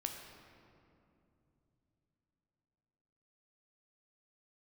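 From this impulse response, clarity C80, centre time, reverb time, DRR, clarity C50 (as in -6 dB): 5.5 dB, 59 ms, 2.9 s, 2.5 dB, 4.5 dB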